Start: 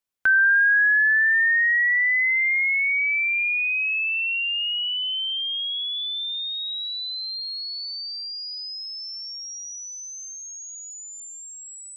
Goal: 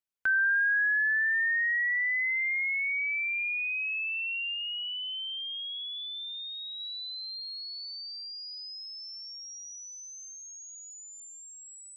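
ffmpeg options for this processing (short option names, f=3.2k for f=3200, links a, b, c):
-filter_complex "[0:a]asettb=1/sr,asplit=3[a][b][c];[a]atrim=end=4.544[d];[b]atrim=start=4.54:end=6.8,asetpts=PTS-STARTPTS,afade=t=in:d=0.004:c=qsin,afade=t=out:st=2.256:d=0.004:c=qsin,highshelf=f=7.2k:g=-9[e];[c]atrim=start=6.796[f];[d][e]acrossfade=d=0.004:c1=hsin:c2=qsin[g];[g][f]acrossfade=d=0.004:c1=qsin:c2=hsin,volume=-8dB"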